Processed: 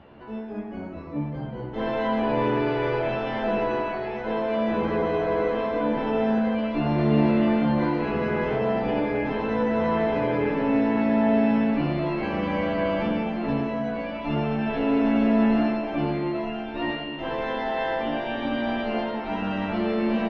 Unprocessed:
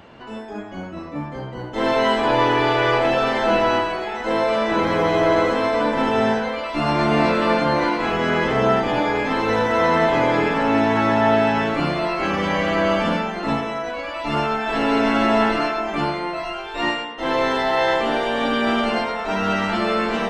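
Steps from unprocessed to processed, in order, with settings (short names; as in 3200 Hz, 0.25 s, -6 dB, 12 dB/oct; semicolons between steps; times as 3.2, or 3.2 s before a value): bell 1500 Hz -5 dB 2.8 oct; de-hum 65.95 Hz, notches 8; in parallel at -0.5 dB: limiter -18 dBFS, peak gain reduction 9 dB; on the sum: air absorption 320 m; doubler 14 ms -4 dB; diffused feedback echo 1.026 s, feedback 46%, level -15 dB; reverb RT60 1.0 s, pre-delay 0.1 s, DRR 8.5 dB; gain -8 dB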